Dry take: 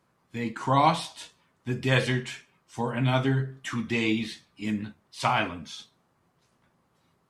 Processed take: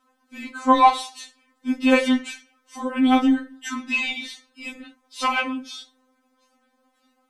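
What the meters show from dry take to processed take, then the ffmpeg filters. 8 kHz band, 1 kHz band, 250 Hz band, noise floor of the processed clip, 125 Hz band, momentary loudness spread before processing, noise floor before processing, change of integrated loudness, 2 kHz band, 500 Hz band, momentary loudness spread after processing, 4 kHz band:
+4.5 dB, +6.5 dB, +8.0 dB, -69 dBFS, under -25 dB, 18 LU, -70 dBFS, +6.0 dB, +4.5 dB, +3.0 dB, 20 LU, +3.5 dB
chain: -af "aeval=exprs='0.501*(cos(1*acos(clip(val(0)/0.501,-1,1)))-cos(1*PI/2))+0.0126*(cos(7*acos(clip(val(0)/0.501,-1,1)))-cos(7*PI/2))':c=same,afftfilt=real='re*3.46*eq(mod(b,12),0)':imag='im*3.46*eq(mod(b,12),0)':win_size=2048:overlap=0.75,volume=7.5dB"

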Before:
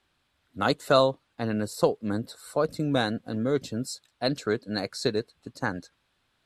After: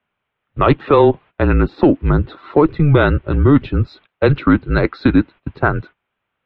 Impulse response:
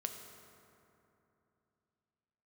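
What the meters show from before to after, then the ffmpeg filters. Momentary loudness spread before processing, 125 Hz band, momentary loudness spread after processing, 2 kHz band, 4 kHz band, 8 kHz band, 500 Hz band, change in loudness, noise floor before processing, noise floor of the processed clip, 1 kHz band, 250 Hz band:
11 LU, +18.0 dB, 8 LU, +11.5 dB, -0.5 dB, under -30 dB, +10.0 dB, +12.5 dB, -73 dBFS, -77 dBFS, +10.5 dB, +14.5 dB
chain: -filter_complex "[0:a]agate=range=-18dB:threshold=-48dB:ratio=16:detection=peak,asplit=2[a][b];[b]asoftclip=type=tanh:threshold=-16dB,volume=-6dB[c];[a][c]amix=inputs=2:normalize=0,highpass=f=200:t=q:w=0.5412,highpass=f=200:t=q:w=1.307,lowpass=f=3k:t=q:w=0.5176,lowpass=f=3k:t=q:w=0.7071,lowpass=f=3k:t=q:w=1.932,afreqshift=-150,alimiter=level_in=14.5dB:limit=-1dB:release=50:level=0:latency=1,volume=-1dB"

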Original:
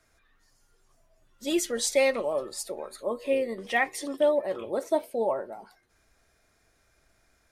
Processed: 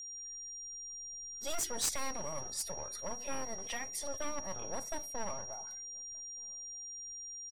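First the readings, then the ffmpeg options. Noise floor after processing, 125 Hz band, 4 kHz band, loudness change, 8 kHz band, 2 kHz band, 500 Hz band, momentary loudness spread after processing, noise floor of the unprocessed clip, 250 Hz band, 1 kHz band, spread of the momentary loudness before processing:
-46 dBFS, n/a, -2.0 dB, -11.5 dB, +1.0 dB, -14.0 dB, -18.0 dB, 8 LU, -68 dBFS, -15.5 dB, -9.0 dB, 11 LU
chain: -filter_complex "[0:a]bandreject=f=60:t=h:w=6,bandreject=f=120:t=h:w=6,bandreject=f=180:t=h:w=6,bandreject=f=240:t=h:w=6,bandreject=f=300:t=h:w=6,agate=range=-33dB:threshold=-58dB:ratio=3:detection=peak,lowshelf=f=120:t=q:w=3:g=7,acrossover=split=460|4500[a][b][c];[a]aeval=exprs='abs(val(0))':c=same[d];[b]acompressor=threshold=-39dB:ratio=10[e];[d][e][c]amix=inputs=3:normalize=0,aeval=exprs='0.15*(cos(1*acos(clip(val(0)/0.15,-1,1)))-cos(1*PI/2))+0.0168*(cos(3*acos(clip(val(0)/0.15,-1,1)))-cos(3*PI/2))':c=same,aeval=exprs='clip(val(0),-1,0.0251)':c=same,aeval=exprs='val(0)+0.00631*sin(2*PI*5700*n/s)':c=same,asplit=2[f][g];[g]adelay=1224,volume=-29dB,highshelf=f=4k:g=-27.6[h];[f][h]amix=inputs=2:normalize=0,volume=1dB"

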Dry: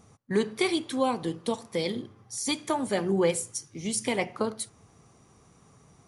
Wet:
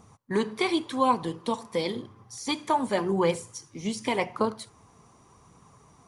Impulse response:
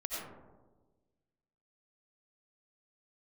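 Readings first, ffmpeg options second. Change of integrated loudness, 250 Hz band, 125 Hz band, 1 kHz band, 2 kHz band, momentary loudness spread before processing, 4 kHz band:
+1.0 dB, +0.5 dB, 0.0 dB, +6.0 dB, +0.5 dB, 9 LU, -0.5 dB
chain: -filter_complex "[0:a]equalizer=f=1k:w=3.7:g=9.5,acrossover=split=5700[a][b];[b]acompressor=threshold=-46dB:ratio=4:attack=1:release=60[c];[a][c]amix=inputs=2:normalize=0,aphaser=in_gain=1:out_gain=1:delay=4.9:decay=0.25:speed=0.9:type=triangular"

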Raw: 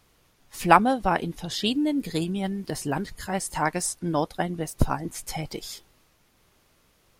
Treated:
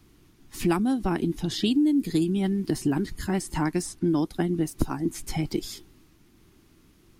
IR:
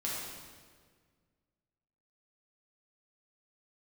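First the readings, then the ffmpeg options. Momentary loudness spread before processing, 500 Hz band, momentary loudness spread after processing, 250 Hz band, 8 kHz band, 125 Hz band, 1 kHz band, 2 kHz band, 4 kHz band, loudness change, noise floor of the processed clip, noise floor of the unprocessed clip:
14 LU, -1.5 dB, 8 LU, +4.0 dB, -4.5 dB, +1.5 dB, -11.0 dB, -7.5 dB, -2.5 dB, -0.5 dB, -59 dBFS, -64 dBFS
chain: -filter_complex "[0:a]lowshelf=f=420:t=q:w=3:g=7.5,acrossover=split=350|4600[a][b][c];[a]acompressor=threshold=-26dB:ratio=4[d];[b]acompressor=threshold=-28dB:ratio=4[e];[c]acompressor=threshold=-37dB:ratio=4[f];[d][e][f]amix=inputs=3:normalize=0"

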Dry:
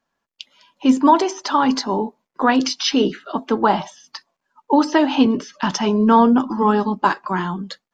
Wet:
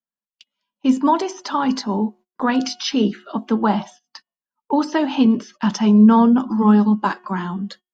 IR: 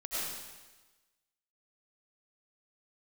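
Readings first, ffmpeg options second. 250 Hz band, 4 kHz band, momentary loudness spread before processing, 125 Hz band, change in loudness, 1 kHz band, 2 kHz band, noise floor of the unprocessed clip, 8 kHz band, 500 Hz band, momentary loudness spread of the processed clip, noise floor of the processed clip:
+2.0 dB, -4.0 dB, 10 LU, +5.0 dB, 0.0 dB, -4.0 dB, -4.0 dB, -80 dBFS, n/a, -4.0 dB, 12 LU, under -85 dBFS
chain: -af "equalizer=f=210:t=o:w=0.27:g=12,bandreject=f=363.4:t=h:w=4,bandreject=f=726.8:t=h:w=4,bandreject=f=1.0902k:t=h:w=4,bandreject=f=1.4536k:t=h:w=4,bandreject=f=1.817k:t=h:w=4,bandreject=f=2.1804k:t=h:w=4,bandreject=f=2.5438k:t=h:w=4,bandreject=f=2.9072k:t=h:w=4,bandreject=f=3.2706k:t=h:w=4,agate=range=-22dB:threshold=-36dB:ratio=16:detection=peak,volume=-4dB"

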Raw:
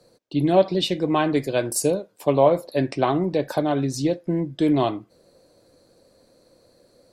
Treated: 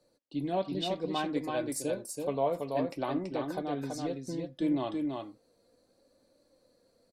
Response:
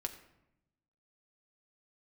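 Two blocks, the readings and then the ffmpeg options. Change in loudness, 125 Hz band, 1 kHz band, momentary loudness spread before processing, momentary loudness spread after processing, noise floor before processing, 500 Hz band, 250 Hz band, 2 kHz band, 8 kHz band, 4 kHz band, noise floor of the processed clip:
-11.5 dB, -14.0 dB, -10.5 dB, 7 LU, 6 LU, -60 dBFS, -12.0 dB, -10.0 dB, -10.5 dB, -11.0 dB, -10.0 dB, -71 dBFS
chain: -af "flanger=delay=3.4:depth=1:regen=46:speed=0.64:shape=sinusoidal,aecho=1:1:331:0.631,volume=-8.5dB"

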